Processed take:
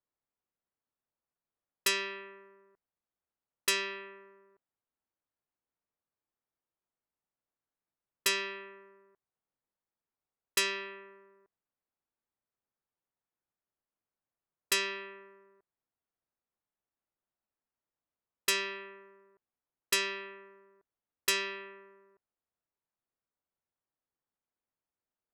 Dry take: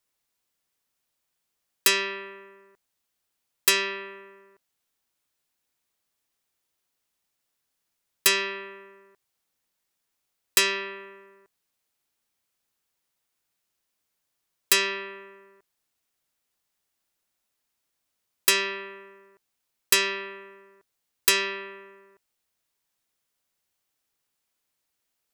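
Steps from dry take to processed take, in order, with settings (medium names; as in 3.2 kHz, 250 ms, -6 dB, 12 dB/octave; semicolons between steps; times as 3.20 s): level-controlled noise filter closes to 1.3 kHz, open at -21.5 dBFS; trim -7.5 dB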